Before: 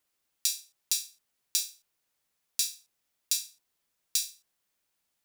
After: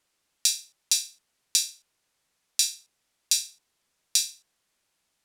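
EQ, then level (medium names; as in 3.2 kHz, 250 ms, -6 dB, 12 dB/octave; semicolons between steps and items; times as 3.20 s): low-pass 10 kHz 12 dB/octave; +6.5 dB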